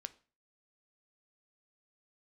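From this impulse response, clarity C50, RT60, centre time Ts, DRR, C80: 19.0 dB, 0.40 s, 2 ms, 12.0 dB, 24.0 dB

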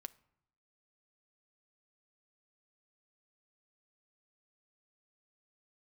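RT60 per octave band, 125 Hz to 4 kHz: 0.85, 0.90, 0.75, 0.80, 0.65, 0.45 s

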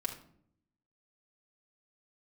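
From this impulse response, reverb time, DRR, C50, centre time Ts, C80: 0.60 s, -1.0 dB, 9.5 dB, 14 ms, 14.0 dB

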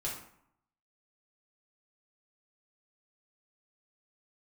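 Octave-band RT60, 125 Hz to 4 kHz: 0.75, 0.75, 0.65, 0.75, 0.55, 0.40 s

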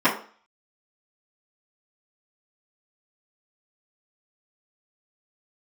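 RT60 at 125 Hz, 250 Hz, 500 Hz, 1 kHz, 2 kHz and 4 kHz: 0.30, 0.40, 0.40, 0.45, 0.40, 0.40 s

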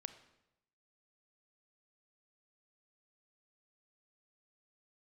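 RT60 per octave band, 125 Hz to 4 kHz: 1.0, 0.90, 0.90, 0.85, 0.80, 0.75 s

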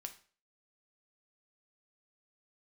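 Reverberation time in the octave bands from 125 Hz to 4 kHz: 0.40, 0.40, 0.45, 0.40, 0.40, 0.40 s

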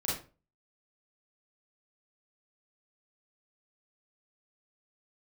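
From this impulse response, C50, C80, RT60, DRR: 2.0 dB, 9.5 dB, 0.35 s, -6.5 dB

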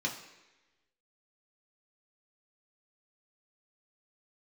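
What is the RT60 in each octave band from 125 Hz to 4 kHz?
0.80, 1.0, 1.1, 1.0, 1.2, 1.1 s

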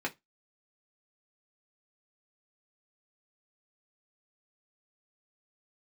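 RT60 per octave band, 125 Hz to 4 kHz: 0.20, 0.20, 0.15, 0.15, 0.15, 0.15 s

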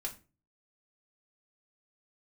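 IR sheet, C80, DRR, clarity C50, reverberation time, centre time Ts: 20.0 dB, -2.5 dB, 14.5 dB, 0.35 s, 12 ms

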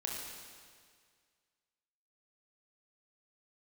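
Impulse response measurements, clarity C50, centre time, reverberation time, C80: 0.5 dB, 95 ms, 1.9 s, 2.0 dB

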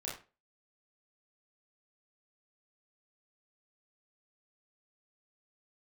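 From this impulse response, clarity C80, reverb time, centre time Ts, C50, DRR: 12.0 dB, 0.30 s, 37 ms, 5.5 dB, -6.0 dB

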